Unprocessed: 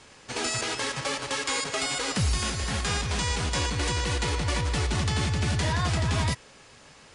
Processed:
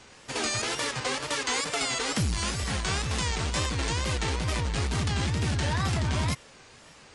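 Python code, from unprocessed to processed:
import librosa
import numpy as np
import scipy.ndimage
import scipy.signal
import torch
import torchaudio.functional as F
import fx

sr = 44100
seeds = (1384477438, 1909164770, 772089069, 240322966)

y = fx.wow_flutter(x, sr, seeds[0], rate_hz=2.1, depth_cents=140.0)
y = fx.transformer_sat(y, sr, knee_hz=150.0)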